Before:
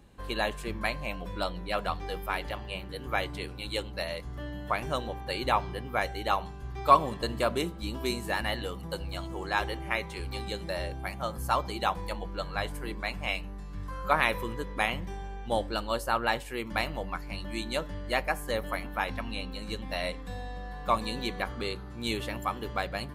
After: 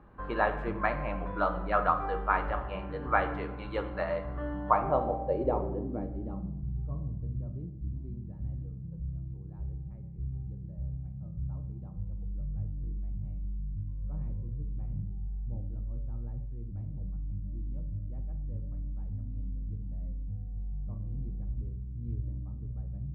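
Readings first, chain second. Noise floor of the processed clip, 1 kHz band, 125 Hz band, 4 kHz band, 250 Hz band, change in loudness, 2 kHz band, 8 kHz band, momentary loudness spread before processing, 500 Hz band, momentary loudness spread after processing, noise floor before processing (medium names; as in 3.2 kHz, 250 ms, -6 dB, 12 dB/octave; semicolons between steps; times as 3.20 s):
-42 dBFS, -4.0 dB, +3.5 dB, under -20 dB, -2.5 dB, -3.0 dB, -7.5 dB, under -35 dB, 9 LU, -3.0 dB, 11 LU, -41 dBFS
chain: low-pass sweep 1.3 kHz -> 110 Hz, 4.48–6.97 s; simulated room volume 290 m³, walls mixed, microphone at 0.52 m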